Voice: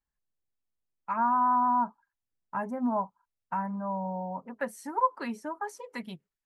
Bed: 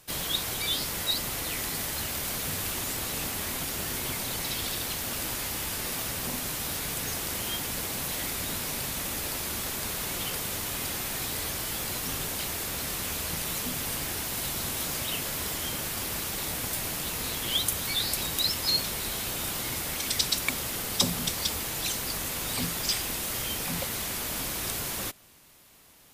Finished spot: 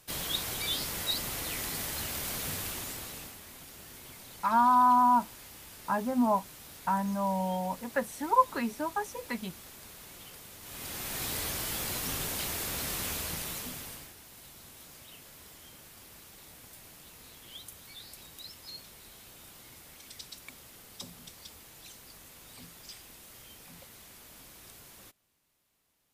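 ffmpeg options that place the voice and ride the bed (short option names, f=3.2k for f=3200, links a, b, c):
-filter_complex "[0:a]adelay=3350,volume=2.5dB[a];[1:a]volume=11dB,afade=t=out:st=2.49:d=0.91:silence=0.223872,afade=t=in:st=10.6:d=0.69:silence=0.188365,afade=t=out:st=13.06:d=1.08:silence=0.133352[b];[a][b]amix=inputs=2:normalize=0"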